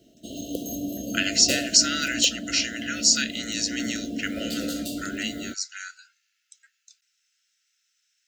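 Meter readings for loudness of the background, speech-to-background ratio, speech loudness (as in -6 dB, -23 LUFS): -32.5 LUFS, 9.0 dB, -23.5 LUFS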